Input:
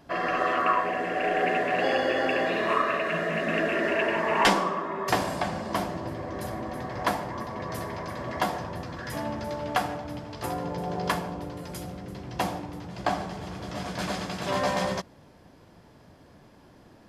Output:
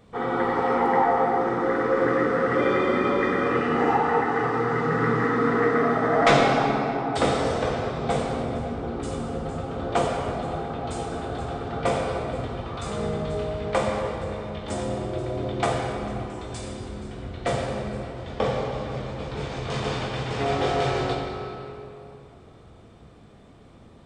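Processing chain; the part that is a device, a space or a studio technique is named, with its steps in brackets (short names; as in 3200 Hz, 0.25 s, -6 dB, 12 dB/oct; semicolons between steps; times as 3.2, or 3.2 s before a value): slowed and reverbed (varispeed -29%; reverb RT60 2.9 s, pre-delay 5 ms, DRR -1 dB)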